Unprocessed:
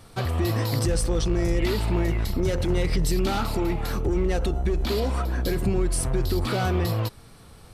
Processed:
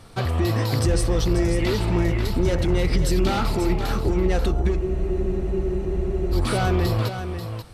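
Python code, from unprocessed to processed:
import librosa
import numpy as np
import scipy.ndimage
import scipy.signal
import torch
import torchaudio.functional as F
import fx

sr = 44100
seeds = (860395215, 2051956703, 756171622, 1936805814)

p1 = fx.high_shelf(x, sr, hz=11000.0, db=-9.0)
p2 = p1 + fx.echo_single(p1, sr, ms=537, db=-8.5, dry=0)
p3 = fx.spec_freeze(p2, sr, seeds[0], at_s=4.81, hold_s=1.52)
y = p3 * librosa.db_to_amplitude(2.5)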